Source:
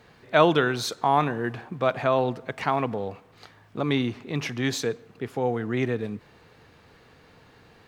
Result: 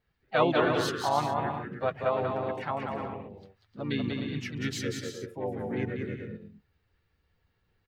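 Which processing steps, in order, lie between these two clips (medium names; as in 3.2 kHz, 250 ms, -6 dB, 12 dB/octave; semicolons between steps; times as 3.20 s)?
expander on every frequency bin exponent 1.5; bouncing-ball echo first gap 190 ms, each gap 0.6×, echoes 5; harmony voices -4 st -5 dB, +3 st -11 dB; trim -6 dB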